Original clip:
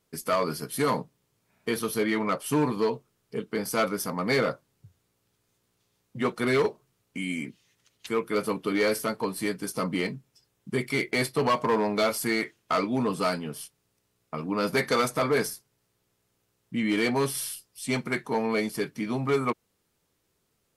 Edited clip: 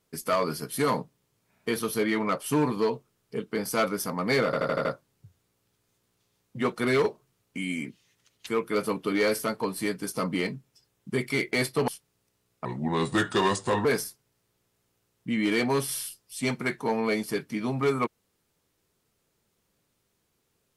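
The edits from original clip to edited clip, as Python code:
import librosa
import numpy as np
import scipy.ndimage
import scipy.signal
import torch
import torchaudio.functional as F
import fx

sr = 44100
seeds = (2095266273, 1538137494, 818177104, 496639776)

y = fx.edit(x, sr, fx.stutter(start_s=4.45, slice_s=0.08, count=6),
    fx.cut(start_s=11.48, length_s=2.1),
    fx.speed_span(start_s=14.35, length_s=0.96, speed=0.8), tone=tone)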